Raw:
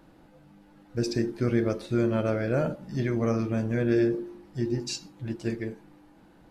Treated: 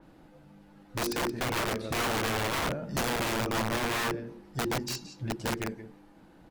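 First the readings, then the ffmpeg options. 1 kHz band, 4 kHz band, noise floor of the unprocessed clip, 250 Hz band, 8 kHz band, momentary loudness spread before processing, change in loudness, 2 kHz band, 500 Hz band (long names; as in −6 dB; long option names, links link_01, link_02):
+8.5 dB, +7.5 dB, −56 dBFS, −7.5 dB, +7.0 dB, 10 LU, −2.5 dB, +6.5 dB, −5.5 dB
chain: -filter_complex "[0:a]asplit=2[link_01][link_02];[link_02]adelay=174.9,volume=-12dB,highshelf=frequency=4000:gain=-3.94[link_03];[link_01][link_03]amix=inputs=2:normalize=0,aeval=exprs='(mod(15.8*val(0)+1,2)-1)/15.8':channel_layout=same,adynamicequalizer=threshold=0.00708:dfrequency=3600:dqfactor=0.7:tfrequency=3600:tqfactor=0.7:attack=5:release=100:ratio=0.375:range=2.5:mode=cutabove:tftype=highshelf"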